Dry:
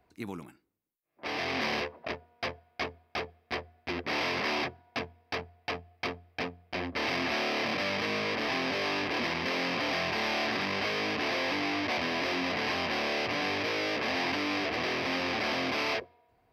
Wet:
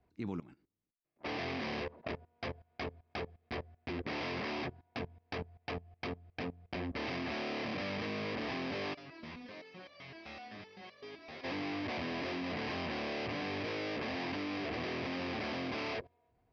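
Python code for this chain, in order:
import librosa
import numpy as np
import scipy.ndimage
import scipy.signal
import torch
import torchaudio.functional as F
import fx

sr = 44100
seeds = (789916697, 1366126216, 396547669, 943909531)

y = scipy.signal.sosfilt(scipy.signal.butter(4, 5700.0, 'lowpass', fs=sr, output='sos'), x)
y = fx.low_shelf(y, sr, hz=380.0, db=10.0)
y = fx.level_steps(y, sr, step_db=18)
y = fx.resonator_held(y, sr, hz=7.8, low_hz=78.0, high_hz=580.0, at=(8.93, 11.43), fade=0.02)
y = y * 10.0 ** (-2.0 / 20.0)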